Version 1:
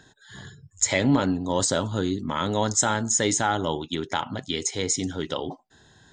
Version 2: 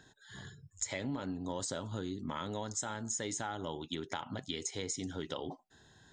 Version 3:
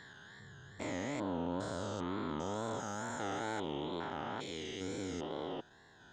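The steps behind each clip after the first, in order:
downward compressor, threshold −28 dBFS, peak gain reduction 12 dB; level −6.5 dB
spectrum averaged block by block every 400 ms; mid-hump overdrive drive 11 dB, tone 1,300 Hz, clips at −27 dBFS; tape wow and flutter 98 cents; level +4.5 dB

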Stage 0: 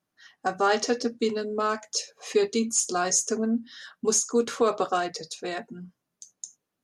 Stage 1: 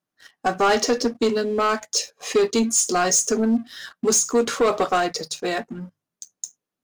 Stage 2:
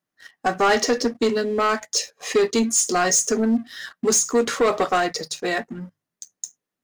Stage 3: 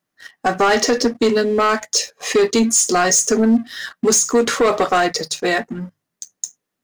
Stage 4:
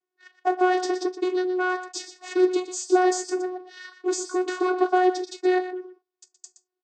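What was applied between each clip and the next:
mains-hum notches 50/100/150 Hz; leveller curve on the samples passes 2
parametric band 1,900 Hz +5.5 dB 0.3 octaves
brickwall limiter −14.5 dBFS, peak gain reduction 4 dB; level +6 dB
channel vocoder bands 16, saw 366 Hz; single-tap delay 120 ms −11.5 dB; level −7 dB

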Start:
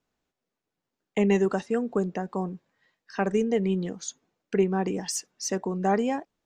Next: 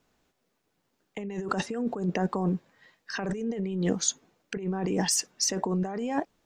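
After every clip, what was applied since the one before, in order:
compressor whose output falls as the input rises −33 dBFS, ratio −1
level +3.5 dB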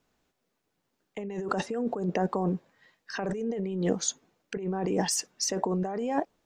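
dynamic equaliser 580 Hz, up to +6 dB, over −43 dBFS, Q 0.78
level −3 dB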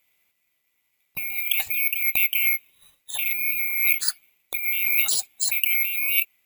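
neighbouring bands swapped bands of 2,000 Hz
bad sample-rate conversion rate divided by 3×, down none, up zero stuff
level +1.5 dB

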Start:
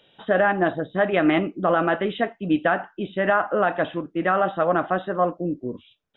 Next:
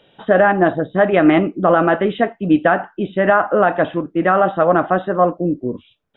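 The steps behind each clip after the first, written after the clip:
high-shelf EQ 2,800 Hz −10.5 dB
level +7.5 dB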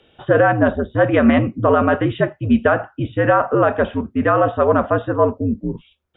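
frequency shifter −74 Hz
level −1 dB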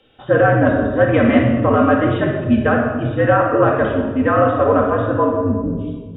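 rectangular room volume 1,500 cubic metres, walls mixed, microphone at 2.1 metres
level −3 dB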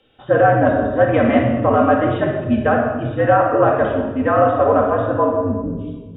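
dynamic equaliser 730 Hz, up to +7 dB, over −30 dBFS, Q 1.9
level −3 dB

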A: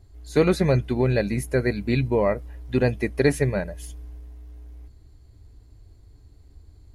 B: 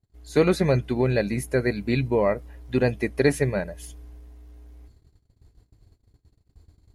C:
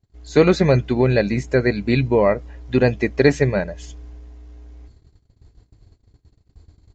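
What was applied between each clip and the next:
noise gate −47 dBFS, range −24 dB; low-shelf EQ 82 Hz −7 dB
downsampling to 16,000 Hz; level +5.5 dB

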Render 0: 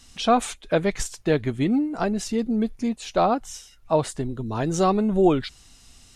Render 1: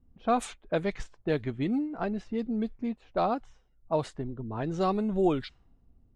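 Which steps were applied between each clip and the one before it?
low-pass that shuts in the quiet parts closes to 370 Hz, open at −16 dBFS
level −7 dB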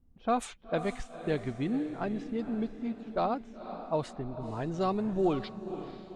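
feedback delay with all-pass diffusion 497 ms, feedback 46%, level −11 dB
level −2.5 dB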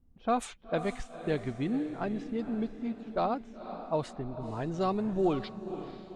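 no processing that can be heard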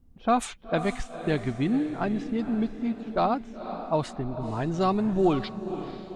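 dynamic equaliser 490 Hz, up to −5 dB, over −45 dBFS, Q 2.6
level +6.5 dB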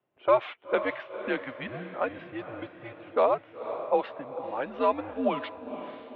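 single-sideband voice off tune −120 Hz 500–3,200 Hz
level +2.5 dB

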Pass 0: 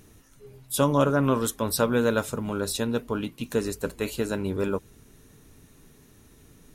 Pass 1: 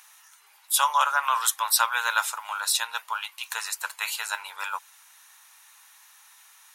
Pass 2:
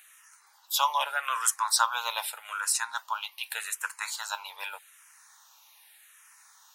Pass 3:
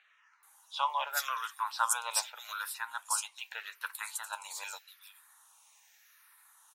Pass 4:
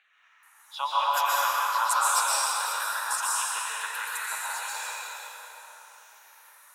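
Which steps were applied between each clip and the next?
elliptic high-pass filter 860 Hz, stop band 60 dB; level +8 dB
frequency shifter mixed with the dry sound −0.83 Hz
multiband delay without the direct sound lows, highs 430 ms, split 3,900 Hz; level −5 dB
dense smooth reverb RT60 4.1 s, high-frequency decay 0.6×, pre-delay 110 ms, DRR −8 dB

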